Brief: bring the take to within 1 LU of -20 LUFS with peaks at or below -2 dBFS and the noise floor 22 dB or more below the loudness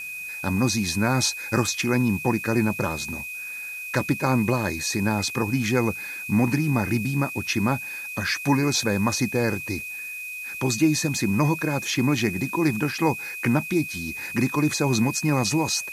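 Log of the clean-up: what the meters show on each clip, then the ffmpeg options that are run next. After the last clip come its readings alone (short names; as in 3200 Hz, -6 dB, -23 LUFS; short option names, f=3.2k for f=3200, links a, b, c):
steady tone 2500 Hz; tone level -32 dBFS; noise floor -35 dBFS; noise floor target -46 dBFS; loudness -24.0 LUFS; peak -8.0 dBFS; loudness target -20.0 LUFS
-> -af "bandreject=f=2.5k:w=30"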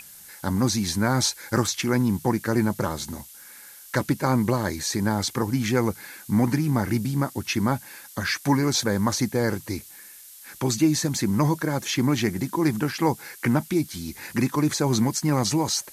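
steady tone none; noise floor -46 dBFS; noise floor target -47 dBFS
-> -af "afftdn=nr=6:nf=-46"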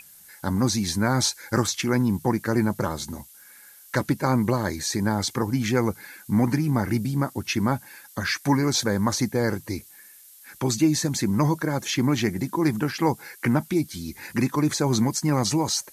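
noise floor -50 dBFS; loudness -24.5 LUFS; peak -7.5 dBFS; loudness target -20.0 LUFS
-> -af "volume=4.5dB"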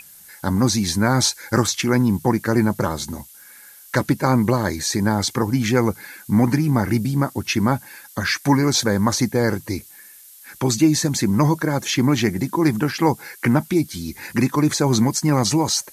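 loudness -20.0 LUFS; peak -3.0 dBFS; noise floor -45 dBFS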